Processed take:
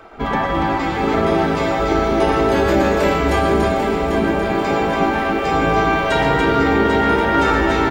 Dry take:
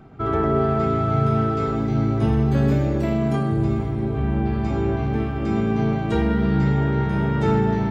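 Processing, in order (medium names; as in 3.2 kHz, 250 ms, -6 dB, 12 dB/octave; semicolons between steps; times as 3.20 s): spectral gate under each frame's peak -10 dB weak; loudspeakers at several distances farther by 40 m -10 dB, 98 m -5 dB; loudness maximiser +19 dB; bit-crushed delay 793 ms, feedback 55%, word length 7-bit, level -7.5 dB; trim -6 dB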